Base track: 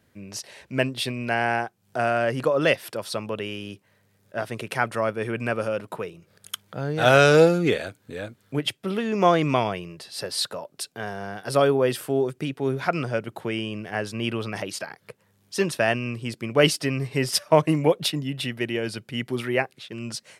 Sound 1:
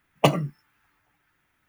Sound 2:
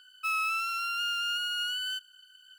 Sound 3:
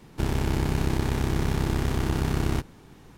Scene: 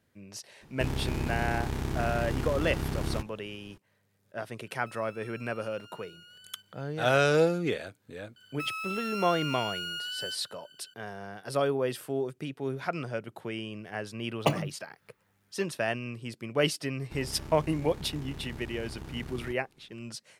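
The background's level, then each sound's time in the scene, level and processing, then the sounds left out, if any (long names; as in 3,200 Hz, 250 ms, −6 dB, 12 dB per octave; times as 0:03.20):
base track −8 dB
0:00.61: mix in 3 −6.5 dB
0:04.63: mix in 2 −11 dB + downward compressor 5 to 1, threshold −42 dBFS
0:08.36: mix in 2 −1.5 dB + downward compressor 4 to 1, threshold −32 dBFS
0:14.22: mix in 1 −7 dB
0:16.92: mix in 3 −17 dB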